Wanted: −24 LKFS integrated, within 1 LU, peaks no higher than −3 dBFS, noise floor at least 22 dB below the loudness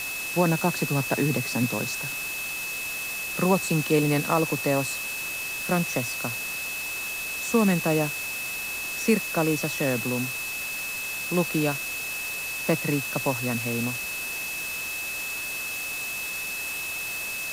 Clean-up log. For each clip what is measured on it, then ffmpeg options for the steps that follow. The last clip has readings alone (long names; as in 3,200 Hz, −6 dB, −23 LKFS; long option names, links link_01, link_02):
interfering tone 2,600 Hz; level of the tone −31 dBFS; background noise floor −32 dBFS; target noise floor −49 dBFS; integrated loudness −26.5 LKFS; sample peak −9.0 dBFS; target loudness −24.0 LKFS
→ -af "bandreject=frequency=2600:width=30"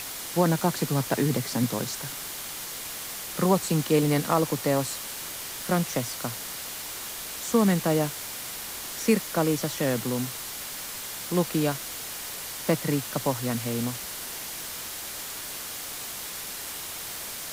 interfering tone none found; background noise floor −37 dBFS; target noise floor −50 dBFS
→ -af "afftdn=noise_reduction=13:noise_floor=-37"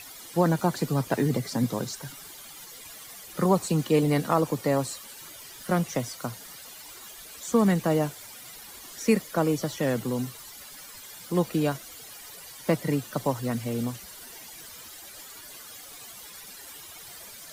background noise floor −45 dBFS; target noise floor −49 dBFS
→ -af "afftdn=noise_reduction=6:noise_floor=-45"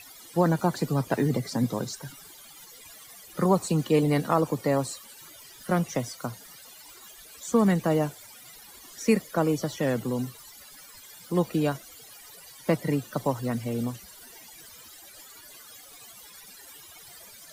background noise floor −49 dBFS; integrated loudness −27.0 LKFS; sample peak −9.5 dBFS; target loudness −24.0 LKFS
→ -af "volume=3dB"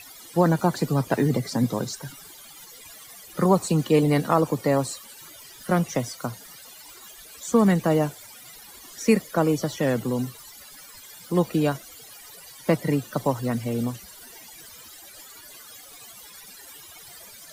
integrated loudness −24.0 LKFS; sample peak −6.5 dBFS; background noise floor −46 dBFS